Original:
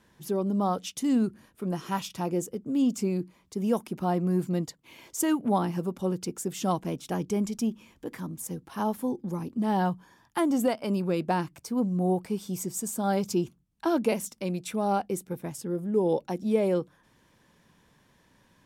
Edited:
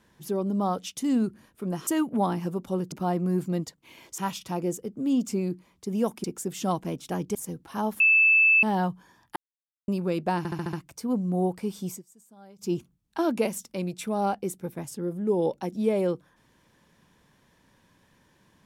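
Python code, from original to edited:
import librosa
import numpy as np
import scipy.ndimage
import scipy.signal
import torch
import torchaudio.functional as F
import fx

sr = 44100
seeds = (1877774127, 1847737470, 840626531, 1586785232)

y = fx.edit(x, sr, fx.swap(start_s=1.87, length_s=2.06, other_s=5.19, other_length_s=1.05),
    fx.cut(start_s=7.35, length_s=1.02),
    fx.bleep(start_s=9.02, length_s=0.63, hz=2630.0, db=-15.5),
    fx.silence(start_s=10.38, length_s=0.52),
    fx.stutter(start_s=11.4, slice_s=0.07, count=6),
    fx.fade_down_up(start_s=12.55, length_s=0.85, db=-24.0, fade_s=0.15), tone=tone)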